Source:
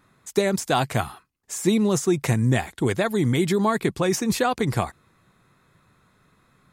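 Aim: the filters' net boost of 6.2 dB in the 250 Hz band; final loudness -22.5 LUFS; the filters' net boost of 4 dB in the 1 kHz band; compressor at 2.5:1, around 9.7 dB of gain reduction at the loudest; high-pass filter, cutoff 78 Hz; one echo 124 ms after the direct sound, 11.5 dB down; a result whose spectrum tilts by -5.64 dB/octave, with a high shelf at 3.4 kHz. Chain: high-pass 78 Hz; peaking EQ 250 Hz +8 dB; peaking EQ 1 kHz +5.5 dB; treble shelf 3.4 kHz -6.5 dB; compression 2.5:1, threshold -26 dBFS; delay 124 ms -11.5 dB; trim +4.5 dB

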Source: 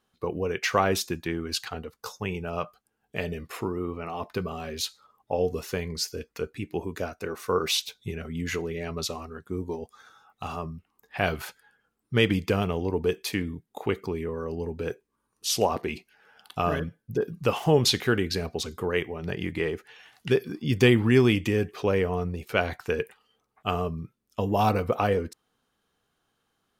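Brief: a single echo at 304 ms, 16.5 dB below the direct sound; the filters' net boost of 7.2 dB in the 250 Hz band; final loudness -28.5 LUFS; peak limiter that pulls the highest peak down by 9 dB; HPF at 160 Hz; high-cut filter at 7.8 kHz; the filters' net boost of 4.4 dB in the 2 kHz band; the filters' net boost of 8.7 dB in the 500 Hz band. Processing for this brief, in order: high-pass 160 Hz; low-pass 7.8 kHz; peaking EQ 250 Hz +7.5 dB; peaking EQ 500 Hz +8 dB; peaking EQ 2 kHz +5 dB; peak limiter -8.5 dBFS; delay 304 ms -16.5 dB; trim -5 dB

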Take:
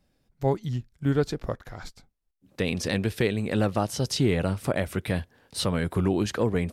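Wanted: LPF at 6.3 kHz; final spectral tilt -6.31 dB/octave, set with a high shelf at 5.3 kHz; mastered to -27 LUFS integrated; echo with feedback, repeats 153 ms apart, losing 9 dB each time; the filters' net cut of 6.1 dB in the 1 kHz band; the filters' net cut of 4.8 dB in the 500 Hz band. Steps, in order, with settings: low-pass 6.3 kHz; peaking EQ 500 Hz -4.5 dB; peaking EQ 1 kHz -6.5 dB; treble shelf 5.3 kHz -6.5 dB; feedback delay 153 ms, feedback 35%, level -9 dB; trim +1.5 dB

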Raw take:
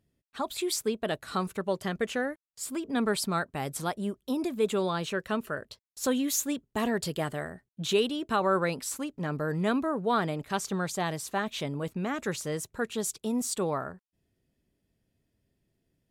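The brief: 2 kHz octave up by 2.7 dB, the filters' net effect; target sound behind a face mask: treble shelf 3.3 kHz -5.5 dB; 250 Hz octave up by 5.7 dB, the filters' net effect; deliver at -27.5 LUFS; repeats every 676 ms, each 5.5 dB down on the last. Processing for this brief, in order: peaking EQ 250 Hz +7 dB; peaking EQ 2 kHz +5 dB; treble shelf 3.3 kHz -5.5 dB; feedback delay 676 ms, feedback 53%, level -5.5 dB; trim -0.5 dB

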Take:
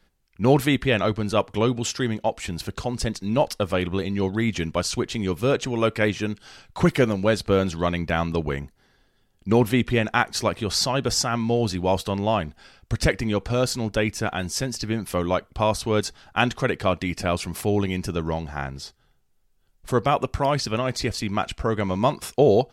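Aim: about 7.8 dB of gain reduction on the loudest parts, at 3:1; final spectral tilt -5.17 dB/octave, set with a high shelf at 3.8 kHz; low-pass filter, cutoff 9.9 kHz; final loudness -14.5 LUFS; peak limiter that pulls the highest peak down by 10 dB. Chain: low-pass 9.9 kHz; treble shelf 3.8 kHz -4 dB; compression 3:1, threshold -23 dBFS; trim +16 dB; peak limiter -3 dBFS

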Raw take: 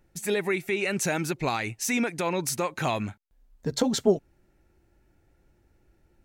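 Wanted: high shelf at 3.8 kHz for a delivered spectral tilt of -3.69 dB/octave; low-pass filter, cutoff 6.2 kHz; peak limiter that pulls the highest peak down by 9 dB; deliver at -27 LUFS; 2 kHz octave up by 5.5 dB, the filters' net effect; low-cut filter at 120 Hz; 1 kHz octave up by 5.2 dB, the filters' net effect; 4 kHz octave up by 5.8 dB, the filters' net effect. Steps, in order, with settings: high-pass 120 Hz; low-pass 6.2 kHz; peaking EQ 1 kHz +5.5 dB; peaking EQ 2 kHz +4 dB; treble shelf 3.8 kHz -4.5 dB; peaking EQ 4 kHz +9 dB; trim +1.5 dB; peak limiter -15.5 dBFS

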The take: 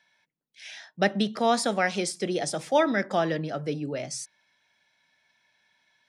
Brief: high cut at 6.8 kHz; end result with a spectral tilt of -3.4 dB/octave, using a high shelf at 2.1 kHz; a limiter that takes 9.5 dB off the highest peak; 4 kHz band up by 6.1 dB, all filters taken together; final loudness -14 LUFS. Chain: low-pass 6.8 kHz; treble shelf 2.1 kHz +5.5 dB; peaking EQ 4 kHz +3 dB; trim +14.5 dB; peak limiter -1.5 dBFS

